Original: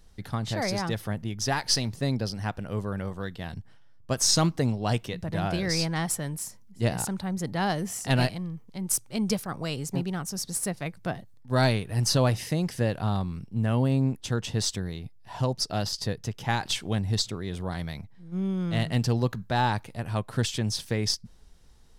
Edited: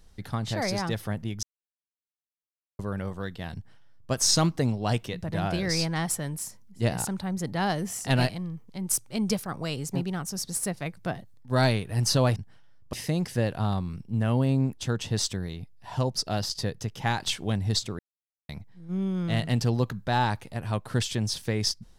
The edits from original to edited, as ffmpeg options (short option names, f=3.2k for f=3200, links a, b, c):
-filter_complex "[0:a]asplit=7[a][b][c][d][e][f][g];[a]atrim=end=1.43,asetpts=PTS-STARTPTS,afade=t=out:st=1.426:d=0.004:c=hsin[h];[b]atrim=start=1.43:end=2.79,asetpts=PTS-STARTPTS,volume=0[i];[c]atrim=start=2.79:end=12.362,asetpts=PTS-STARTPTS,afade=t=in:d=0.004:c=hsin[j];[d]atrim=start=3.538:end=4.112[k];[e]atrim=start=12.358:end=17.42,asetpts=PTS-STARTPTS,afade=t=out:st=5.058:d=0.004:c=hsin[l];[f]atrim=start=17.42:end=17.92,asetpts=PTS-STARTPTS,volume=0[m];[g]atrim=start=17.92,asetpts=PTS-STARTPTS,afade=t=in:d=0.004:c=hsin[n];[h][i][j]concat=n=3:v=0:a=1[o];[o][k]acrossfade=d=0.004:c1=hsin:c2=hsin[p];[l][m][n]concat=n=3:v=0:a=1[q];[p][q]acrossfade=d=0.004:c1=hsin:c2=hsin"